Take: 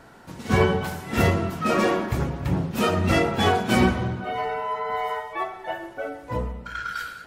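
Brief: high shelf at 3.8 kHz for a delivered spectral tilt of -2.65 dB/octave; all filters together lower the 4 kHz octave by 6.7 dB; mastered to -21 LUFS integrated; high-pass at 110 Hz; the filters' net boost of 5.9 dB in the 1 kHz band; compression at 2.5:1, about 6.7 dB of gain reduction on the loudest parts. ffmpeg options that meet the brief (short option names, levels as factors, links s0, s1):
-af "highpass=110,equalizer=f=1000:t=o:g=8.5,highshelf=f=3800:g=-3,equalizer=f=4000:t=o:g=-8.5,acompressor=threshold=0.0708:ratio=2.5,volume=1.88"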